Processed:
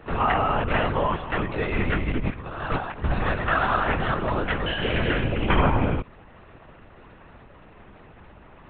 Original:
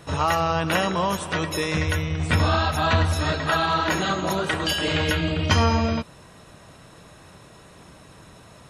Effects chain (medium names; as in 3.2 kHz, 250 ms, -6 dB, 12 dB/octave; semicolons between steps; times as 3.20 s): low-pass 2.8 kHz 24 dB/octave; 2.08–3.04 s: compressor with a negative ratio -27 dBFS, ratio -0.5; LPC vocoder at 8 kHz whisper